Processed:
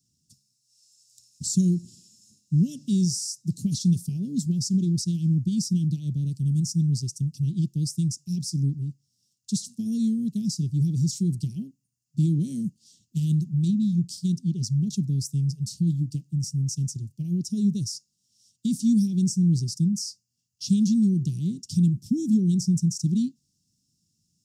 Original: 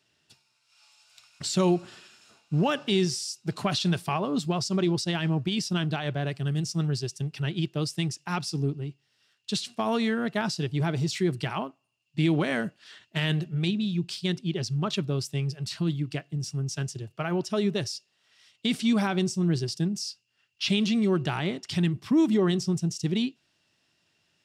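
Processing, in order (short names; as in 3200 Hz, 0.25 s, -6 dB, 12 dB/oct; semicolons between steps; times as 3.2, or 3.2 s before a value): Chebyshev band-stop 220–6000 Hz, order 3; gain +5.5 dB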